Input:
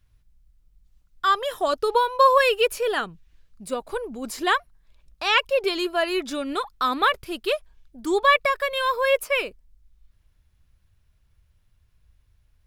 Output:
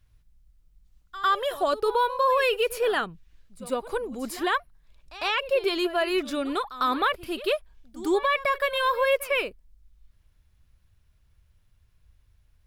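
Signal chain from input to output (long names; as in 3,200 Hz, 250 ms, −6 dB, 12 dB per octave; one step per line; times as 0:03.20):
brickwall limiter −15 dBFS, peak gain reduction 9 dB
echo ahead of the sound 102 ms −16 dB
dynamic equaliser 6,400 Hz, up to −6 dB, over −49 dBFS, Q 1.3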